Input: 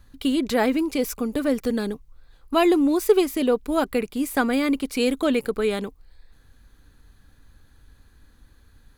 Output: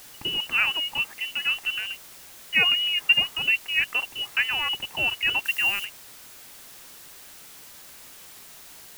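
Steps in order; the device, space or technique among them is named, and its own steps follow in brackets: scrambled radio voice (BPF 400–2800 Hz; inverted band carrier 3200 Hz; white noise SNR 18 dB); 5.45–5.85 high shelf 5600 Hz +9.5 dB

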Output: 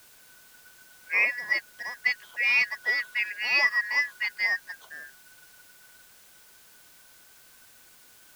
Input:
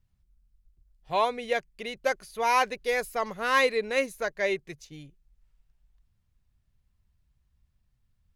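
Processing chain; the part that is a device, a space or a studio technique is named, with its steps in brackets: split-band scrambled radio (four-band scrambler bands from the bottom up 3142; BPF 340–2800 Hz; white noise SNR 24 dB); gain +2.5 dB

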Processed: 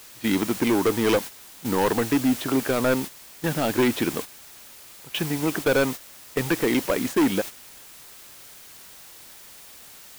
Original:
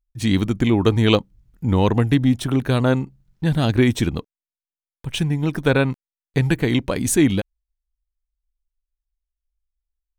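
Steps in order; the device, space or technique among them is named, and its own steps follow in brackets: aircraft radio (BPF 320–2600 Hz; hard clip -19 dBFS, distortion -9 dB; white noise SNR 10 dB; gate -33 dBFS, range -10 dB); gain +3 dB

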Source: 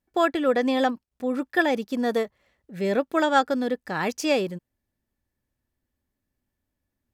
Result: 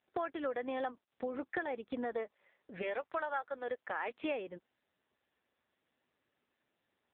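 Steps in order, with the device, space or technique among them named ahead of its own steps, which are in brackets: 2.81–4.09 HPF 740 Hz -> 340 Hz 12 dB/oct; voicemail (BPF 400–3200 Hz; compressor 6:1, threshold -35 dBFS, peak gain reduction 18.5 dB; gain +1 dB; AMR-NB 6.7 kbps 8000 Hz)

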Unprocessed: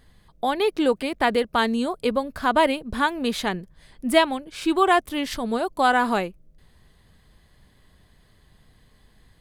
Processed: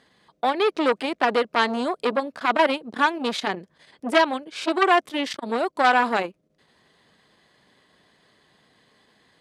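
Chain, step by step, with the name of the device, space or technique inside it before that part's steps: public-address speaker with an overloaded transformer (core saturation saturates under 2100 Hz; BPF 270–6800 Hz); gain +3.5 dB

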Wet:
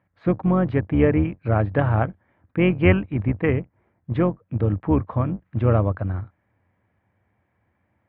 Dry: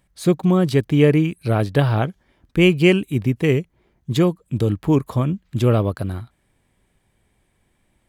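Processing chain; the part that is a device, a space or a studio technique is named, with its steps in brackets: 2.8–3.5 dynamic EQ 1200 Hz, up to +6 dB, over -33 dBFS, Q 0.76; sub-octave bass pedal (octaver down 2 oct, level -2 dB; speaker cabinet 85–2000 Hz, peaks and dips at 91 Hz +4 dB, 150 Hz -8 dB, 240 Hz -4 dB, 390 Hz -8 dB)

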